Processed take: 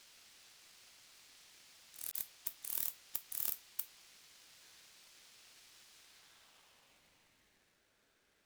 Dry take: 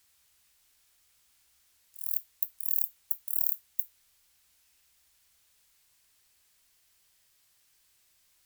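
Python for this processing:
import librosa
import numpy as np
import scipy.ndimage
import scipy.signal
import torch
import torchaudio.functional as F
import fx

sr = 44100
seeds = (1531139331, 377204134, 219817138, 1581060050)

y = fx.dispersion(x, sr, late='highs', ms=44.0, hz=2800.0, at=(2.11, 3.49))
y = fx.filter_sweep_bandpass(y, sr, from_hz=3600.0, to_hz=530.0, start_s=5.96, end_s=7.87, q=1.5)
y = y * np.sign(np.sin(2.0 * np.pi * 1000.0 * np.arange(len(y)) / sr))
y = y * librosa.db_to_amplitude(13.5)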